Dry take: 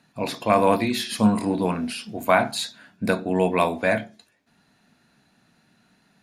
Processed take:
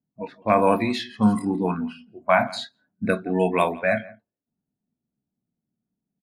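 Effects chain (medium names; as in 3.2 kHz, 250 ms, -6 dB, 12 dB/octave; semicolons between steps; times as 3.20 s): spectral noise reduction 18 dB; delay 170 ms -21 dB; level-controlled noise filter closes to 370 Hz, open at -17.5 dBFS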